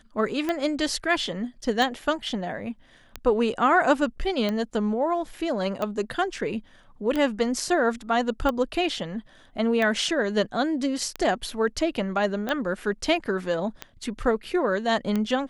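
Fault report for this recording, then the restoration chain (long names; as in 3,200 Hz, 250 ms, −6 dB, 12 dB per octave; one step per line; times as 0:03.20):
scratch tick 45 rpm −14 dBFS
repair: click removal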